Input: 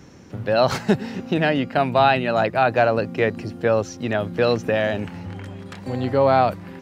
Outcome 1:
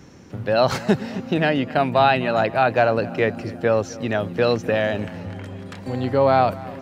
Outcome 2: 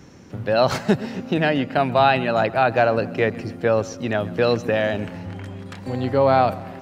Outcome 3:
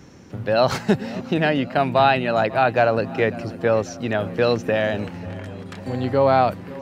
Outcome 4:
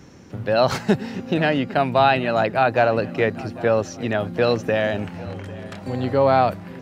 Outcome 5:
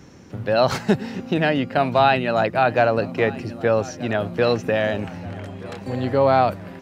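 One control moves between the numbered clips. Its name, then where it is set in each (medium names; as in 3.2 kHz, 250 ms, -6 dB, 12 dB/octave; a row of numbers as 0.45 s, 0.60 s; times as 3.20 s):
filtered feedback delay, time: 255 ms, 133 ms, 544 ms, 801 ms, 1227 ms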